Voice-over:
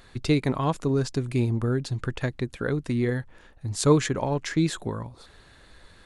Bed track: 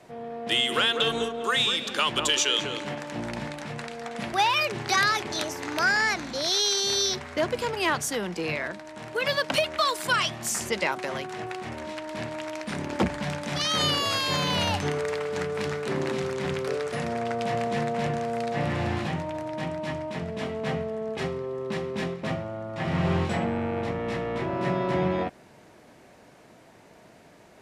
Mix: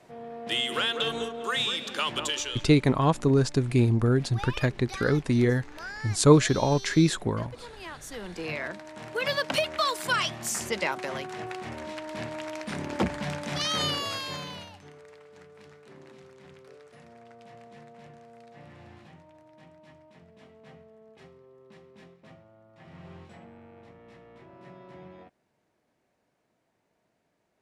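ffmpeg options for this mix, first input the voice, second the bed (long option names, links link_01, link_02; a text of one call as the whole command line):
ffmpeg -i stem1.wav -i stem2.wav -filter_complex "[0:a]adelay=2400,volume=2.5dB[link_01];[1:a]volume=10.5dB,afade=type=out:start_time=2.16:duration=0.51:silence=0.237137,afade=type=in:start_time=7.99:duration=0.7:silence=0.188365,afade=type=out:start_time=13.65:duration=1.05:silence=0.1[link_02];[link_01][link_02]amix=inputs=2:normalize=0" out.wav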